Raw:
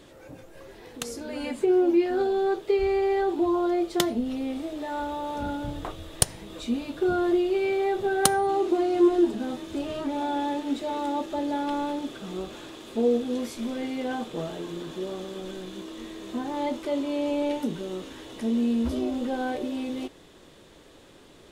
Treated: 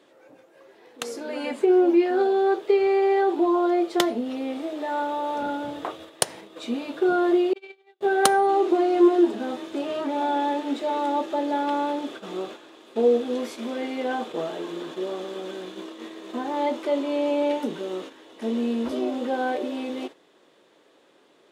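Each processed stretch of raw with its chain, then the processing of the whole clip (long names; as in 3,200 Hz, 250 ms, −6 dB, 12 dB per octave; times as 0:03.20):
0:07.53–0:08.01: meter weighting curve D + noise gate −21 dBFS, range −45 dB
whole clip: noise gate −39 dBFS, range −9 dB; high-pass filter 340 Hz 12 dB per octave; high-shelf EQ 4,300 Hz −9.5 dB; level +5.5 dB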